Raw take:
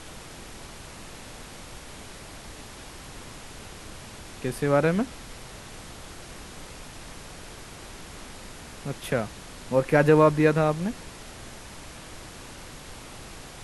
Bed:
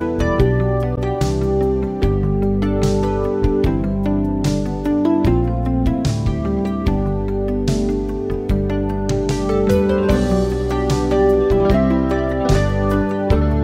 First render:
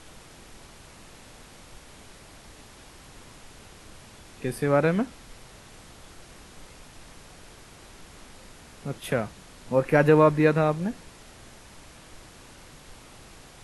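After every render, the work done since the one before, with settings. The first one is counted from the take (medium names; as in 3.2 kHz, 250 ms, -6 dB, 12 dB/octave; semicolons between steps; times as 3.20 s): noise print and reduce 6 dB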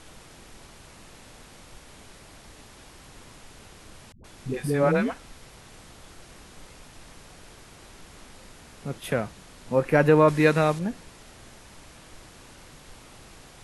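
4.12–5.61 s: phase dispersion highs, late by 122 ms, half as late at 350 Hz; 10.28–10.79 s: treble shelf 2.1 kHz +9 dB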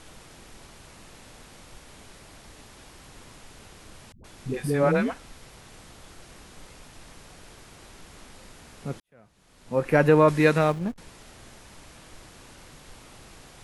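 9.00–9.89 s: fade in quadratic; 10.58–10.98 s: hysteresis with a dead band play -32.5 dBFS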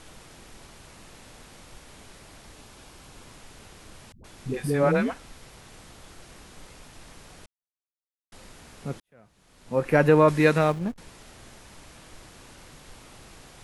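2.54–3.27 s: band-stop 1.9 kHz; 7.46–8.32 s: mute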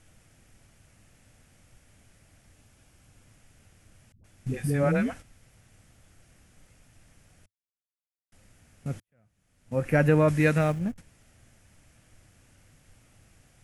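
gate -39 dBFS, range -10 dB; fifteen-band graphic EQ 100 Hz +8 dB, 400 Hz -7 dB, 1 kHz -10 dB, 4 kHz -9 dB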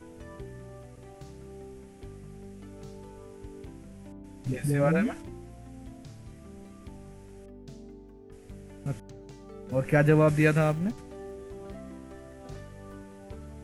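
add bed -28 dB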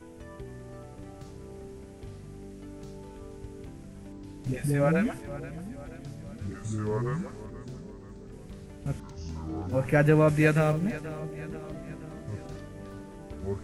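ever faster or slower copies 453 ms, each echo -5 st, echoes 2, each echo -6 dB; two-band feedback delay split 380 Hz, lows 655 ms, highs 480 ms, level -15 dB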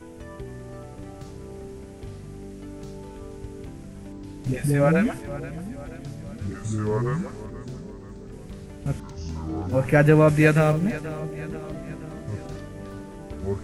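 trim +5 dB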